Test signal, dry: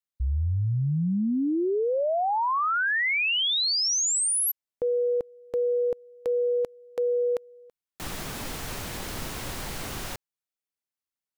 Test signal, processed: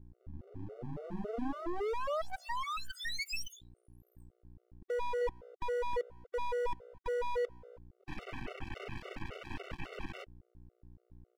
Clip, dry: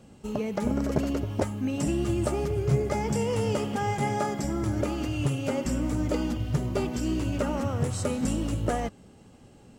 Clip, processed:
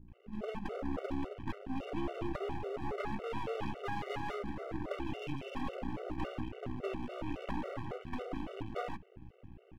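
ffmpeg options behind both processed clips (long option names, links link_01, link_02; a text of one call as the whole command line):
ffmpeg -i in.wav -filter_complex "[0:a]aresample=16000,aresample=44100,highshelf=frequency=3400:width_type=q:width=3:gain=-8.5,acrossover=split=480|4700[link_01][link_02][link_03];[link_01]dynaudnorm=framelen=130:gausssize=5:maxgain=8dB[link_04];[link_04][link_02][link_03]amix=inputs=3:normalize=0,aeval=exprs='(tanh(11.2*val(0)+0.6)-tanh(0.6))/11.2':channel_layout=same,acrossover=split=220|3500[link_05][link_06][link_07];[link_05]acompressor=threshold=-36dB:ratio=10:attack=0.36:release=33:knee=2.83:detection=peak[link_08];[link_08][link_06][link_07]amix=inputs=3:normalize=0,acrossover=split=200[link_09][link_10];[link_10]adelay=80[link_11];[link_09][link_11]amix=inputs=2:normalize=0,aeval=exprs='val(0)+0.00316*(sin(2*PI*60*n/s)+sin(2*PI*2*60*n/s)/2+sin(2*PI*3*60*n/s)/3+sin(2*PI*4*60*n/s)/4+sin(2*PI*5*60*n/s)/5)':channel_layout=same,asuperstop=centerf=5500:order=20:qfactor=1,bass=frequency=250:gain=2,treble=frequency=4000:gain=-8,aeval=exprs='max(val(0),0)':channel_layout=same,afftfilt=real='re*gt(sin(2*PI*3.6*pts/sr)*(1-2*mod(floor(b*sr/1024/380),2)),0)':imag='im*gt(sin(2*PI*3.6*pts/sr)*(1-2*mod(floor(b*sr/1024/380),2)),0)':win_size=1024:overlap=0.75,volume=-1dB" out.wav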